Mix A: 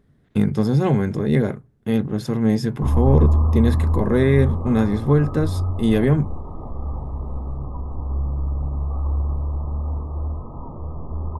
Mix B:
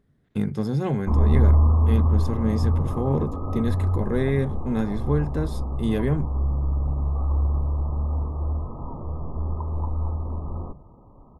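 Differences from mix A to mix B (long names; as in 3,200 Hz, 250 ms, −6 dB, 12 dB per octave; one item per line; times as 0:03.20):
speech −6.5 dB
background: entry −1.75 s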